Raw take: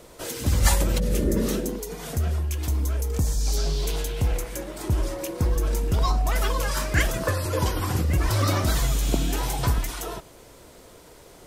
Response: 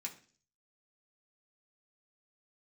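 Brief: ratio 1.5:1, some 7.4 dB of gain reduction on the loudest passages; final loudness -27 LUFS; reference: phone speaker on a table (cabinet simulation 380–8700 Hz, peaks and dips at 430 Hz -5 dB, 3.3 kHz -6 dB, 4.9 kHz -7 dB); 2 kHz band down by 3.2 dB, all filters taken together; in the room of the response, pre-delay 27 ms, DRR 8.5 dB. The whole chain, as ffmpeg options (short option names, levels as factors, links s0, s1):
-filter_complex "[0:a]equalizer=f=2000:t=o:g=-3.5,acompressor=threshold=0.0178:ratio=1.5,asplit=2[s0][s1];[1:a]atrim=start_sample=2205,adelay=27[s2];[s1][s2]afir=irnorm=-1:irlink=0,volume=0.473[s3];[s0][s3]amix=inputs=2:normalize=0,highpass=f=380:w=0.5412,highpass=f=380:w=1.3066,equalizer=f=430:t=q:w=4:g=-5,equalizer=f=3300:t=q:w=4:g=-6,equalizer=f=4900:t=q:w=4:g=-7,lowpass=f=8700:w=0.5412,lowpass=f=8700:w=1.3066,volume=3.55"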